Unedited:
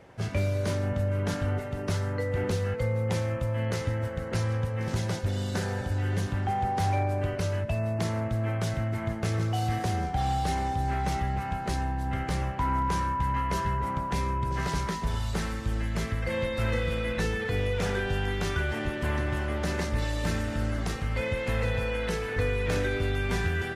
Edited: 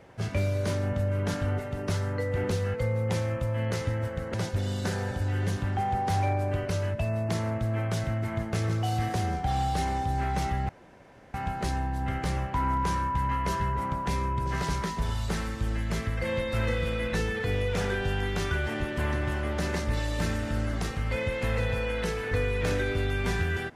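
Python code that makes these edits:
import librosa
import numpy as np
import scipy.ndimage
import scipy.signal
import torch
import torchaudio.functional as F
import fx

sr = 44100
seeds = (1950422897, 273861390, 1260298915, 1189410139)

y = fx.edit(x, sr, fx.cut(start_s=4.34, length_s=0.7),
    fx.insert_room_tone(at_s=11.39, length_s=0.65), tone=tone)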